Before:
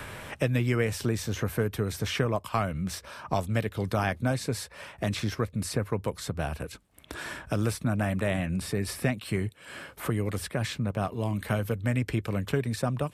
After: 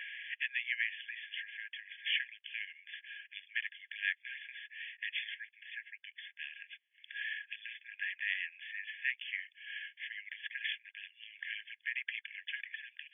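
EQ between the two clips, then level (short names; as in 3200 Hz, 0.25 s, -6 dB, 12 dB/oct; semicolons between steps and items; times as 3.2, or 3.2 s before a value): brick-wall FIR band-pass 1600–3500 Hz; +1.5 dB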